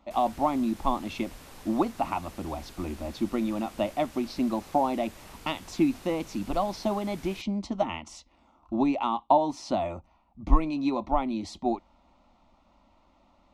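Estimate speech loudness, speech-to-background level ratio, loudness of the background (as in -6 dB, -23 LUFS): -29.5 LUFS, 19.0 dB, -48.5 LUFS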